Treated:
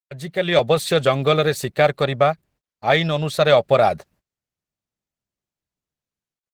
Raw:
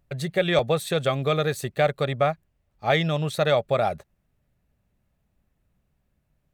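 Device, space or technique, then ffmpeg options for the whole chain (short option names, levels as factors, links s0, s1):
video call: -af "adynamicequalizer=threshold=0.00282:dfrequency=4700:dqfactor=2.9:tfrequency=4700:tqfactor=2.9:attack=5:release=100:ratio=0.375:range=2.5:mode=boostabove:tftype=bell,highpass=f=130:p=1,dynaudnorm=f=110:g=9:m=5.96,agate=range=0.0282:threshold=0.00316:ratio=16:detection=peak,volume=0.891" -ar 48000 -c:a libopus -b:a 16k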